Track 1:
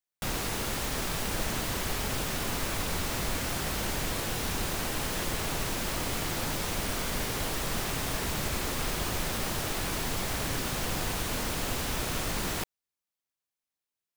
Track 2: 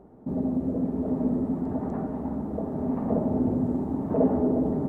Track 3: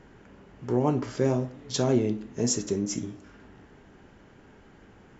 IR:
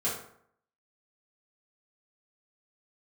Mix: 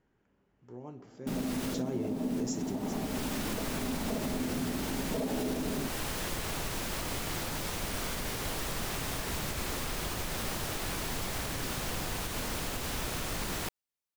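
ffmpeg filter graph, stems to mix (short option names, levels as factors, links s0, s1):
-filter_complex "[0:a]adelay=1050,volume=0.708[s0];[1:a]highpass=f=120:w=0.5412,highpass=f=120:w=1.3066,adelay=1000,volume=0.596[s1];[2:a]volume=0.355,afade=t=in:st=1.55:d=0.29:silence=0.251189,afade=t=out:st=2.64:d=0.33:silence=0.281838,asplit=2[s2][s3];[s3]apad=whole_len=671024[s4];[s0][s4]sidechaincompress=threshold=0.00562:ratio=8:attack=5.3:release=544[s5];[s5][s1][s2]amix=inputs=3:normalize=0,alimiter=limit=0.0631:level=0:latency=1:release=98"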